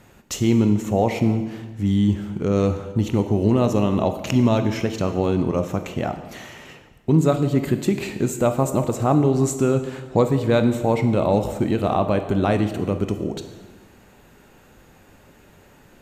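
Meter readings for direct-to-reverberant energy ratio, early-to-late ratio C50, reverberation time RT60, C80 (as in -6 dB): 7.5 dB, 9.5 dB, 1.3 s, 11.0 dB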